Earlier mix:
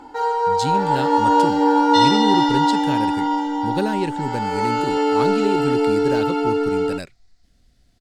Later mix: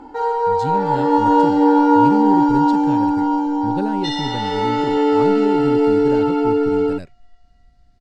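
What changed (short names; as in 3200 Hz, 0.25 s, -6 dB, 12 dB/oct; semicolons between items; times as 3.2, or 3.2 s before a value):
speech -6.5 dB; second sound: entry +2.10 s; master: add tilt -2.5 dB/oct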